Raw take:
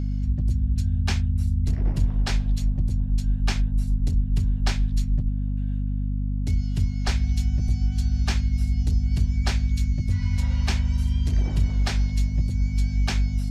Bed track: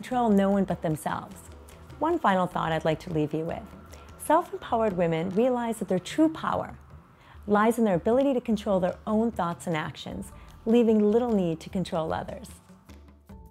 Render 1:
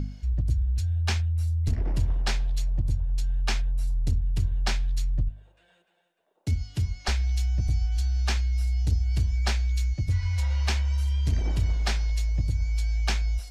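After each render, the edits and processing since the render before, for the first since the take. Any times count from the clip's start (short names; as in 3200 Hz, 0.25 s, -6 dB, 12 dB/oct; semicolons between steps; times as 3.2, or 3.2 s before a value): de-hum 50 Hz, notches 5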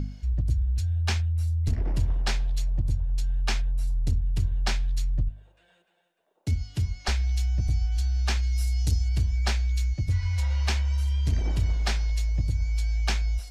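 8.42–9.08 high shelf 5600 Hz -> 3700 Hz +12 dB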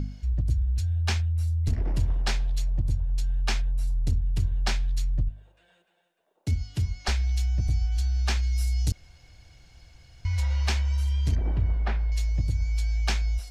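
8.92–10.25 room tone; 11.35–12.12 LPF 1700 Hz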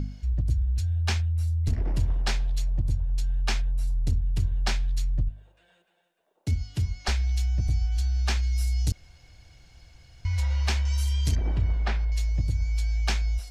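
10.85–12.05 high shelf 3400 Hz +11.5 dB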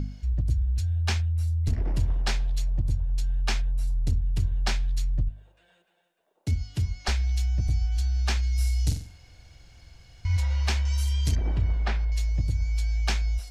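8.54–10.37 flutter echo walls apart 7.8 m, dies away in 0.43 s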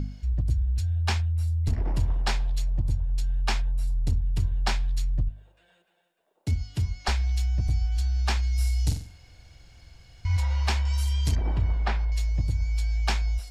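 notch 6100 Hz, Q 20; dynamic EQ 930 Hz, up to +6 dB, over -52 dBFS, Q 1.8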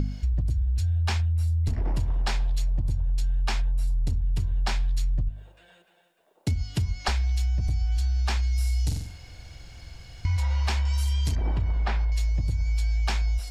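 in parallel at +2 dB: limiter -22 dBFS, peak gain reduction 8.5 dB; on the sum: compressor, threshold -22 dBFS, peak gain reduction 7.5 dB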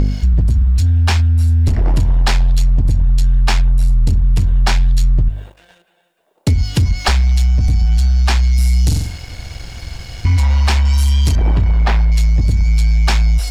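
in parallel at +2 dB: vocal rider 0.5 s; on the sum: sample leveller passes 2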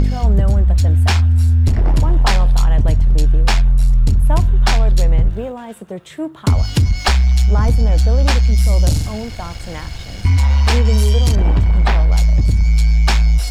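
add bed track -2.5 dB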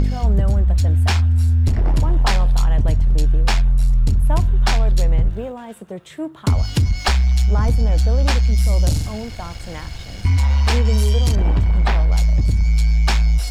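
gain -3 dB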